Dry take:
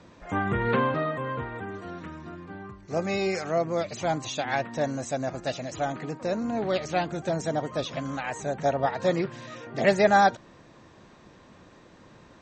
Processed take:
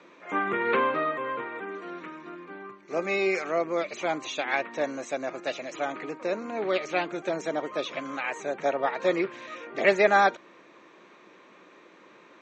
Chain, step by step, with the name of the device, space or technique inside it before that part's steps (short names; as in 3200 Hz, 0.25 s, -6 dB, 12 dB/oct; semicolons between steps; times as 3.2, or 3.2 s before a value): television speaker (speaker cabinet 230–6500 Hz, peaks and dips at 240 Hz -7 dB, 370 Hz +3 dB, 740 Hz -4 dB, 1200 Hz +4 dB, 2300 Hz +8 dB, 5000 Hz -8 dB)